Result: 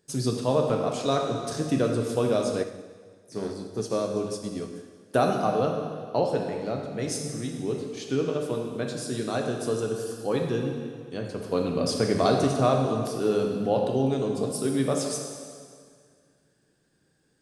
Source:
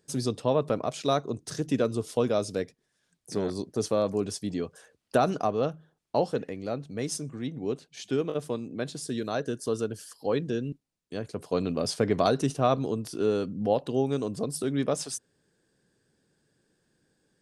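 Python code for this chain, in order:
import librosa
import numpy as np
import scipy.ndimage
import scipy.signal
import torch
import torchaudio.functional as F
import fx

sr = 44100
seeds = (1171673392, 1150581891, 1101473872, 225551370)

y = fx.rev_plate(x, sr, seeds[0], rt60_s=2.0, hf_ratio=0.9, predelay_ms=0, drr_db=1.0)
y = fx.upward_expand(y, sr, threshold_db=-37.0, expansion=1.5, at=(2.62, 5.16), fade=0.02)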